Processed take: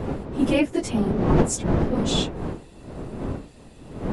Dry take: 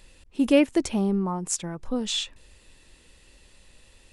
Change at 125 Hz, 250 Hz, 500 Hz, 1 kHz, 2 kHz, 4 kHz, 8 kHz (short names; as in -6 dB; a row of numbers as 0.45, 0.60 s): +10.5, +2.0, +2.0, +5.5, +2.0, +0.5, +0.5 dB